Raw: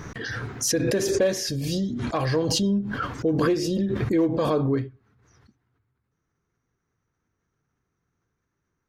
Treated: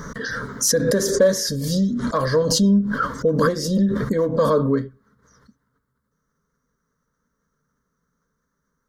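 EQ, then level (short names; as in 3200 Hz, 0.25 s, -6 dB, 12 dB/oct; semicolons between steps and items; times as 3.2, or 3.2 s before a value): fixed phaser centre 510 Hz, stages 8; +7.5 dB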